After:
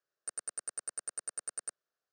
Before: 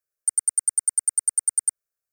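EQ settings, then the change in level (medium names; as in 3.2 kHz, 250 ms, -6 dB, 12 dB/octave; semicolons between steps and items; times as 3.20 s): band-pass 200–6200 Hz; distance through air 120 m; peaking EQ 2.3 kHz -10 dB 0.32 oct; +6.0 dB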